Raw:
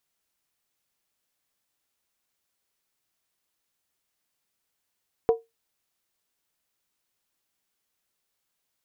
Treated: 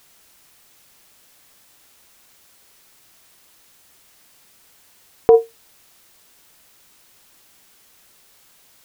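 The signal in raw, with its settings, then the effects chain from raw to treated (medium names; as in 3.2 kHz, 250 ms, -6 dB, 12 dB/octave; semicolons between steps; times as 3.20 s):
skin hit, lowest mode 457 Hz, decay 0.19 s, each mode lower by 10 dB, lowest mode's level -12.5 dB
in parallel at 0 dB: compressor with a negative ratio -32 dBFS, ratio -1; on the sum: loudness maximiser +15.5 dB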